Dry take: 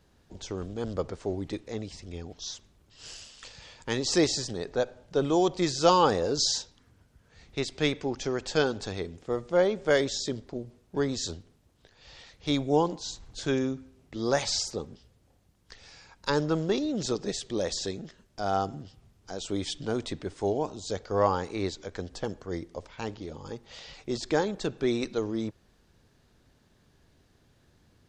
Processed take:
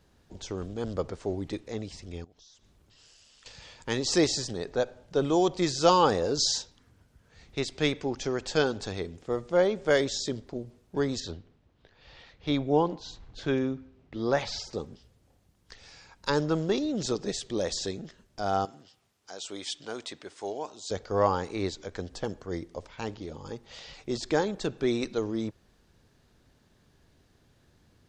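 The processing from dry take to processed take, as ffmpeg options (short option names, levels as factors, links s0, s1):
-filter_complex "[0:a]asettb=1/sr,asplit=3[s0][s1][s2];[s0]atrim=end=2.244[s3];[s1]atrim=start=2.24:end=3.46,asetpts=PTS-STARTPTS,afade=t=in:d=0.004:c=qsin,afade=t=out:st=1.216:d=0.004:c=qsin,acompressor=threshold=0.00158:ratio=5:attack=3.2:release=140:knee=1:detection=peak[s4];[s2]atrim=start=3.456[s5];[s3][s4]acrossfade=d=0.004:c1=hsin:c2=qsin[s6];[s6][s5]acrossfade=d=0.004:c1=qsin:c2=hsin,asettb=1/sr,asplit=3[s7][s8][s9];[s7]atrim=end=11.204[s10];[s8]atrim=start=11.2:end=14.73,asetpts=PTS-STARTPTS,afade=t=in:d=0.004:c=qsin,afade=t=out:st=3.526:d=0.004:c=qsin,lowpass=3500[s11];[s9]atrim=start=14.726[s12];[s10][s11]acrossfade=d=0.004:c1=hsin:c2=qsin[s13];[s13][s12]acrossfade=d=0.004:c1=qsin:c2=hsin,asettb=1/sr,asplit=3[s14][s15][s16];[s14]atrim=end=18.654[s17];[s15]atrim=start=18.65:end=20.91,asetpts=PTS-STARTPTS,afade=t=in:d=0.004:c=qsin,afade=t=out:st=2.256:d=0.004:c=qsin,highpass=f=910:p=1[s18];[s16]atrim=start=20.906[s19];[s17][s18]acrossfade=d=0.004:c1=hsin:c2=qsin[s20];[s20][s19]acrossfade=d=0.004:c1=qsin:c2=hsin"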